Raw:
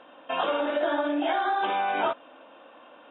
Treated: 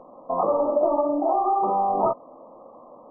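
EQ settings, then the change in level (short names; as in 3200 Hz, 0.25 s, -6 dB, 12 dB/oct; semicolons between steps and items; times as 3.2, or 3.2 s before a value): brick-wall FIR low-pass 1300 Hz; tilt -3.5 dB/oct; bell 290 Hz -8.5 dB 0.36 oct; +3.5 dB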